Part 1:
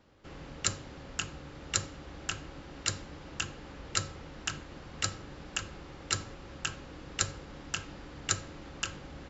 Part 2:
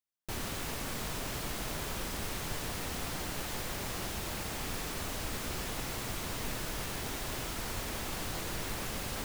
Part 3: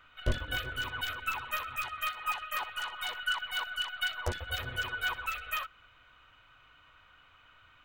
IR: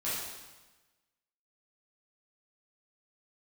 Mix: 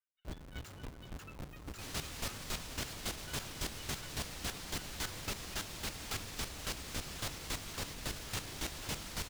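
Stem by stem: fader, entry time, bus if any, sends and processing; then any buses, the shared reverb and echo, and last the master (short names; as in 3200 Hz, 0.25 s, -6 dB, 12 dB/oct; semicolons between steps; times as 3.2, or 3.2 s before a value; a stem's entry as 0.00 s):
-2.5 dB, 0.00 s, no bus, no send, Schmitt trigger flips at -43 dBFS
-4.0 dB, 1.50 s, bus A, no send, fast leveller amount 50%
-15.5 dB, 0.00 s, bus A, no send, per-bin expansion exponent 2
bus A: 0.0 dB, bell 4700 Hz +8 dB 2.6 oct; limiter -27.5 dBFS, peak gain reduction 4.5 dB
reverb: off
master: chopper 3.6 Hz, depth 65%, duty 20%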